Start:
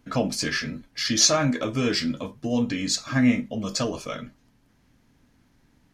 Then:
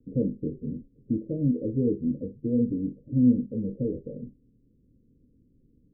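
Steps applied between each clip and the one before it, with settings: steep low-pass 520 Hz 96 dB/octave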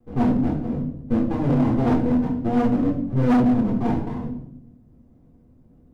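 comb filter that takes the minimum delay 0.82 ms; reverberation RT60 0.80 s, pre-delay 3 ms, DRR -4 dB; overload inside the chain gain 14.5 dB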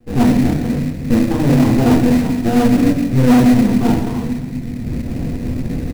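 recorder AGC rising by 44 dB/s; in parallel at -3.5 dB: sample-rate reducer 2.2 kHz, jitter 20%; on the sum: feedback delay 136 ms, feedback 59%, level -13 dB; trim +3 dB

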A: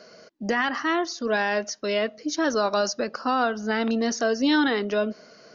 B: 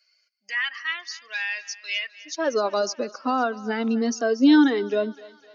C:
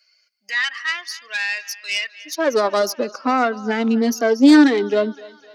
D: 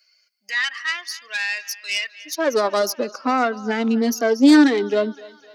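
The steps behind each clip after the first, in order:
expander on every frequency bin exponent 1.5; high-pass sweep 2.3 kHz -> 280 Hz, 2.03–2.58 s; thinning echo 255 ms, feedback 56%, high-pass 550 Hz, level -18 dB
self-modulated delay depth 0.16 ms; trim +5.5 dB
treble shelf 7.9 kHz +5.5 dB; trim -1.5 dB

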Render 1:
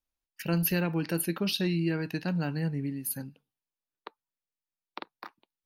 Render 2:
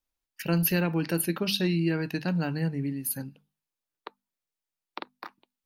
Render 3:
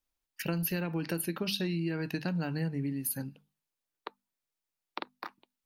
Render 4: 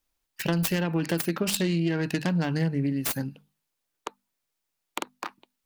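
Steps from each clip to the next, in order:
hum notches 50/100/150/200/250 Hz; trim +2.5 dB
compression, threshold -29 dBFS, peak gain reduction 8.5 dB
self-modulated delay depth 0.19 ms; trim +7 dB

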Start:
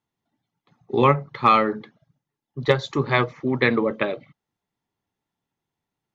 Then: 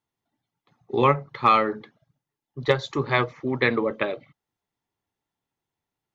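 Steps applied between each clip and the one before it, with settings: peaking EQ 190 Hz -4.5 dB 0.95 oct; trim -1.5 dB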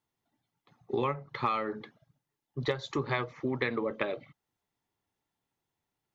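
compression 5:1, threshold -28 dBFS, peak gain reduction 13.5 dB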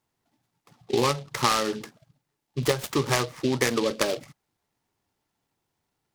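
delay time shaken by noise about 3.4 kHz, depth 0.077 ms; trim +7 dB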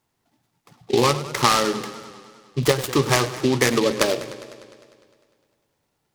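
modulated delay 101 ms, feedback 71%, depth 118 cents, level -15 dB; trim +5 dB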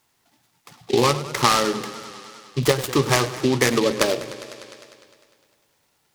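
tape noise reduction on one side only encoder only

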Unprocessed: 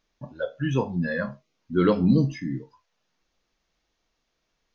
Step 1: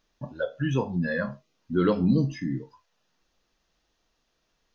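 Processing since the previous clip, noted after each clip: band-stop 2.2 kHz, Q 13; in parallel at +2.5 dB: compression, threshold -29 dBFS, peak gain reduction 14 dB; on the sum: trim -5 dB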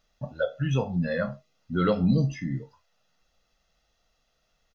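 comb 1.5 ms, depth 57%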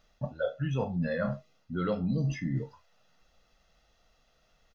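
treble shelf 4 kHz -5.5 dB; reverse; compression 5:1, threshold -33 dBFS, peak gain reduction 14 dB; reverse; trim +5 dB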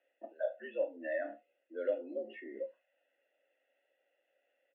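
mistuned SSB +82 Hz 200–3100 Hz; vowel filter e; trim +4.5 dB

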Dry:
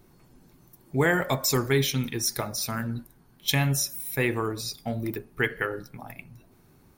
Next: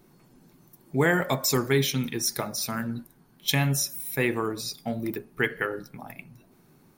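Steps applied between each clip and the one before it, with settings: resonant low shelf 120 Hz -7 dB, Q 1.5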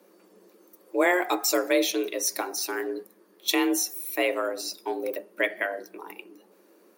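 frequency shift +180 Hz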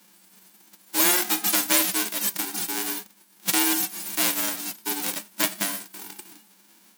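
formants flattened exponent 0.1; trim +2 dB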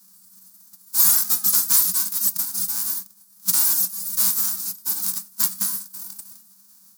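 FFT filter 120 Hz 0 dB, 180 Hz +6 dB, 380 Hz -23 dB, 610 Hz -17 dB, 1.2 kHz +2 dB, 2 kHz -11 dB, 3 kHz -11 dB, 4.7 kHz +6 dB, 14 kHz +11 dB; trim -4.5 dB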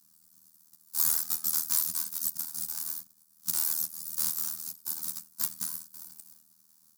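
AM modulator 79 Hz, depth 85%; trim -6.5 dB

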